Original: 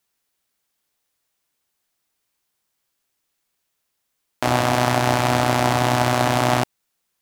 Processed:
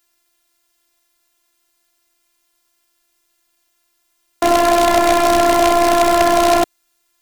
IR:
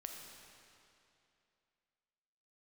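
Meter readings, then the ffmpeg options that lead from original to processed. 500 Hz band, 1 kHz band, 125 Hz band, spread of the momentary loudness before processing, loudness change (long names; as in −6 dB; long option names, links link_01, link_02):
+9.0 dB, +6.0 dB, −13.0 dB, 4 LU, +5.5 dB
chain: -af "afftfilt=real='hypot(re,im)*cos(PI*b)':imag='0':win_size=512:overlap=0.75,aeval=exprs='0.668*sin(PI/2*2.82*val(0)/0.668)':channel_layout=same"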